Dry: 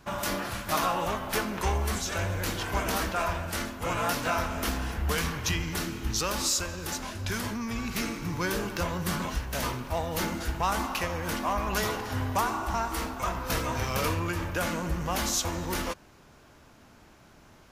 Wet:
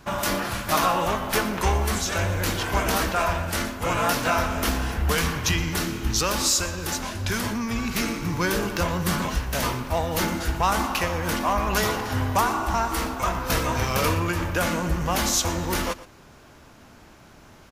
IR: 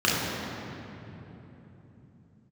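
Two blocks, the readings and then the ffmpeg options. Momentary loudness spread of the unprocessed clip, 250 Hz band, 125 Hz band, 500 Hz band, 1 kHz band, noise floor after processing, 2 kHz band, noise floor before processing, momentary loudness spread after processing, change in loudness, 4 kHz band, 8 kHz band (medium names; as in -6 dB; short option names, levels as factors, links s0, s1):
5 LU, +5.5 dB, +5.5 dB, +5.5 dB, +5.5 dB, -50 dBFS, +5.5 dB, -55 dBFS, 5 LU, +5.5 dB, +5.5 dB, +5.5 dB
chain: -af "aecho=1:1:118:0.141,volume=1.88"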